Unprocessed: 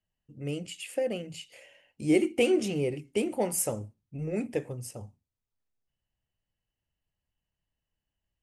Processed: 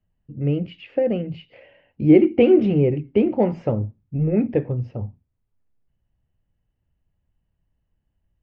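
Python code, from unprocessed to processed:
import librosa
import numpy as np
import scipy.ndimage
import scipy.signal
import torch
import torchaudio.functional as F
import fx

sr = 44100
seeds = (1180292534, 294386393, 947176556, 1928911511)

y = scipy.ndimage.gaussian_filter1d(x, 3.1, mode='constant')
y = fx.low_shelf(y, sr, hz=350.0, db=10.5)
y = F.gain(torch.from_numpy(y), 5.5).numpy()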